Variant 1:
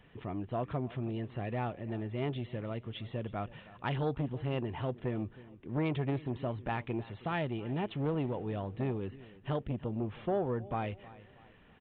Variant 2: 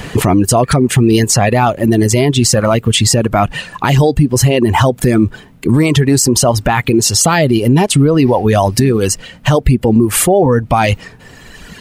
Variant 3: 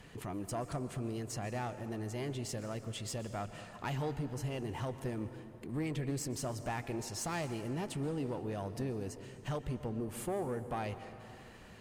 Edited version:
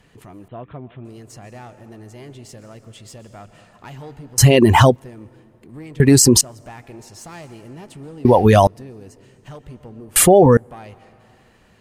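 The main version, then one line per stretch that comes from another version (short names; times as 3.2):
3
0.48–1.05 from 1
4.38–4.96 from 2
6–6.41 from 2
8.25–8.67 from 2
10.16–10.57 from 2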